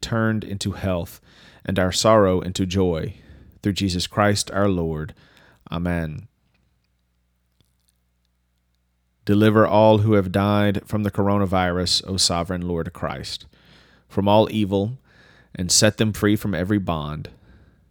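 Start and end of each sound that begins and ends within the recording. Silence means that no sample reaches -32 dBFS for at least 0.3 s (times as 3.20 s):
1.65–3.12 s
3.64–5.10 s
5.67–6.19 s
9.27–13.42 s
14.13–14.95 s
15.55–17.26 s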